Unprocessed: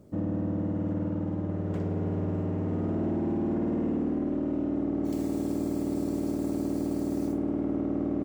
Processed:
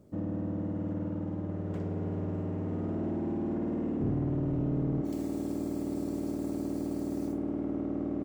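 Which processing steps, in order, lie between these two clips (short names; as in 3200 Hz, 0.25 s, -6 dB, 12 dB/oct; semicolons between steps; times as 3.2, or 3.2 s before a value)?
4–5.01 octaver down 1 oct, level +3 dB; gain -4 dB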